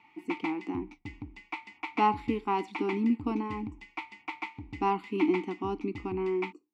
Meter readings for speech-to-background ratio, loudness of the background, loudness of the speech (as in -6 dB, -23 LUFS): 10.5 dB, -42.0 LUFS, -31.5 LUFS